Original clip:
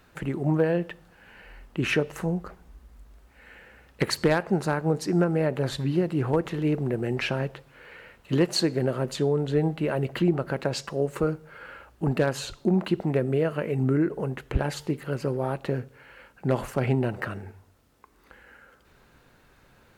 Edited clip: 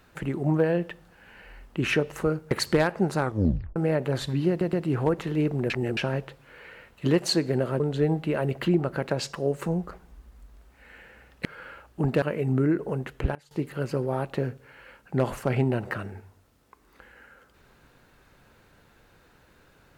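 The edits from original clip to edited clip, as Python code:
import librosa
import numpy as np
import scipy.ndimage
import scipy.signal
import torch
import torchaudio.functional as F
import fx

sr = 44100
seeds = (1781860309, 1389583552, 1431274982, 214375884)

y = fx.edit(x, sr, fx.swap(start_s=2.23, length_s=1.79, other_s=11.2, other_length_s=0.28),
    fx.tape_stop(start_s=4.7, length_s=0.57),
    fx.stutter(start_s=6.0, slice_s=0.12, count=3),
    fx.reverse_span(start_s=6.97, length_s=0.27),
    fx.cut(start_s=9.07, length_s=0.27),
    fx.cut(start_s=12.25, length_s=1.28),
    fx.fade_down_up(start_s=14.29, length_s=0.9, db=-23.0, fade_s=0.37, curve='log'), tone=tone)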